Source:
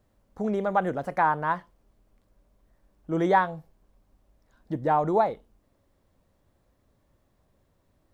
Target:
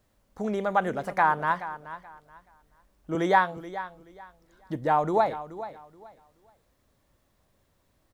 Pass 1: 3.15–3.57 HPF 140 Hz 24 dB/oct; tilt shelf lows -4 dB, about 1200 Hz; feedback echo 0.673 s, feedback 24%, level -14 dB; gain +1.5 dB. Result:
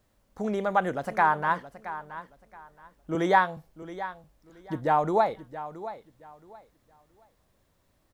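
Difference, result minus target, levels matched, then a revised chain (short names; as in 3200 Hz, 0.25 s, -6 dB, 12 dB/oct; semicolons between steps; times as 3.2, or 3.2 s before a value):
echo 0.245 s late
3.15–3.57 HPF 140 Hz 24 dB/oct; tilt shelf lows -4 dB, about 1200 Hz; feedback echo 0.428 s, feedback 24%, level -14 dB; gain +1.5 dB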